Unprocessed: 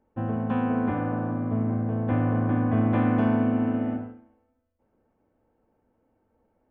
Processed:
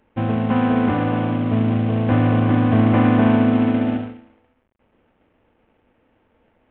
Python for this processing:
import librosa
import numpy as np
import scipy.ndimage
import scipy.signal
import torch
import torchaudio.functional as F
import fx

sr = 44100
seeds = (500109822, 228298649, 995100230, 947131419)

y = fx.cvsd(x, sr, bps=16000)
y = y * librosa.db_to_amplitude(8.0)